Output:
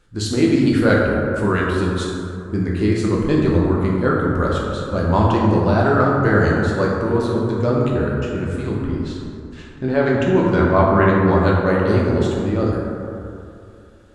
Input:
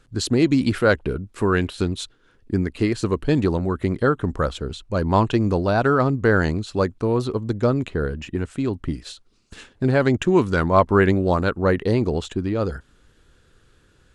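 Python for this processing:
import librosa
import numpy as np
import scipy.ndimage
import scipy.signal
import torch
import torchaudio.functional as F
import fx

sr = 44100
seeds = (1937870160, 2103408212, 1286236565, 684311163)

y = fx.air_absorb(x, sr, metres=88.0, at=(8.78, 11.39))
y = fx.rev_plate(y, sr, seeds[0], rt60_s=2.6, hf_ratio=0.35, predelay_ms=0, drr_db=-4.0)
y = y * librosa.db_to_amplitude(-2.5)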